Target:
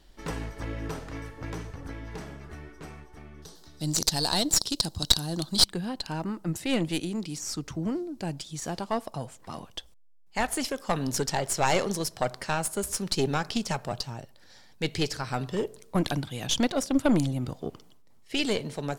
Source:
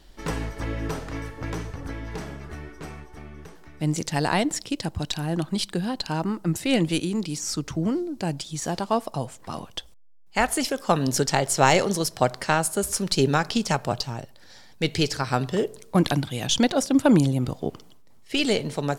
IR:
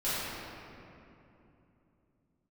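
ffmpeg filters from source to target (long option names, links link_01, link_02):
-filter_complex "[0:a]asettb=1/sr,asplit=3[link_01][link_02][link_03];[link_01]atrim=end=3.424[link_04];[link_02]atrim=start=3.42:end=5.64,asetpts=PTS-STARTPTS,afade=type=in:duration=0.004:curve=qsin,afade=type=out:start_time=2.216:duration=0.004:curve=qsin,highshelf=frequency=3100:width_type=q:width=3:gain=9.5[link_05];[link_03]atrim=start=5.636[link_06];[link_04][link_05]acrossfade=duration=0.004:curve1=hsin:curve2=qsin[link_07];[link_07][link_06]acrossfade=duration=0.004:curve1=qsin:curve2=hsin,aeval=exprs='(tanh(2.51*val(0)+0.8)-tanh(0.8))/2.51':channel_layout=same"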